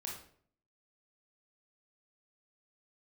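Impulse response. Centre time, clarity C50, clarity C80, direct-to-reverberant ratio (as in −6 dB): 38 ms, 3.5 dB, 8.0 dB, −2.0 dB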